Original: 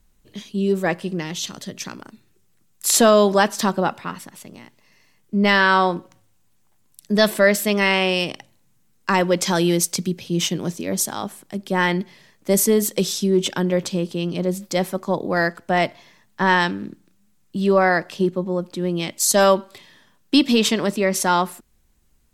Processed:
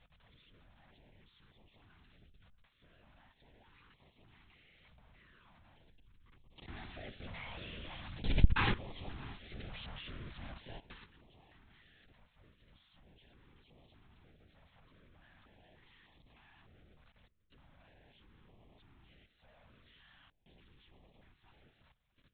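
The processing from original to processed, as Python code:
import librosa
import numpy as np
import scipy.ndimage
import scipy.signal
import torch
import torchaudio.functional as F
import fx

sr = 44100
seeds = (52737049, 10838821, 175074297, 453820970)

y = np.sign(x) * np.sqrt(np.mean(np.square(x)))
y = fx.doppler_pass(y, sr, speed_mps=20, closest_m=1.9, pass_at_s=8.4)
y = fx.low_shelf(y, sr, hz=150.0, db=-9.0)
y = fx.hum_notches(y, sr, base_hz=50, count=6)
y = fx.level_steps(y, sr, step_db=17)
y = fx.lpc_vocoder(y, sr, seeds[0], excitation='whisper', order=8)
y = y + 10.0 ** (-23.5 / 20.0) * np.pad(y, (int(641 * sr / 1000.0), 0))[:len(y)]
y = fx.filter_held_notch(y, sr, hz=3.3, low_hz=350.0, high_hz=1500.0)
y = F.gain(torch.from_numpy(y), 6.5).numpy()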